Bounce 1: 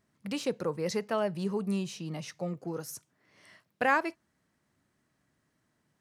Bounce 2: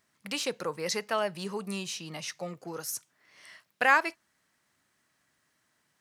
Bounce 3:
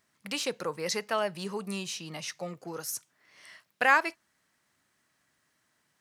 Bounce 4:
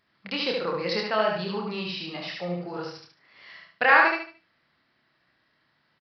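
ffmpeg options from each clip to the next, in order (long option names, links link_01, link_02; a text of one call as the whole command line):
ffmpeg -i in.wav -af "tiltshelf=frequency=640:gain=-7.5" out.wav
ffmpeg -i in.wav -af anull out.wav
ffmpeg -i in.wav -filter_complex "[0:a]asplit=2[link_01][link_02];[link_02]aecho=0:1:74|148|222|296:0.708|0.205|0.0595|0.0173[link_03];[link_01][link_03]amix=inputs=2:normalize=0,aresample=11025,aresample=44100,asplit=2[link_04][link_05];[link_05]aecho=0:1:28|68:0.596|0.355[link_06];[link_04][link_06]amix=inputs=2:normalize=0,volume=2dB" out.wav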